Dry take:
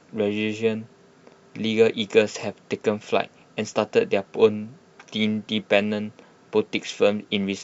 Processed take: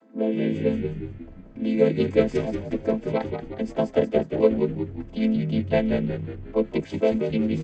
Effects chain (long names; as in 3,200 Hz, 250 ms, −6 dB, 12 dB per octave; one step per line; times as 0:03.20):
channel vocoder with a chord as carrier minor triad, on A3
notch filter 5,600 Hz, Q 16
echo with shifted repeats 181 ms, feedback 54%, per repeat −63 Hz, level −6 dB
one half of a high-frequency compander decoder only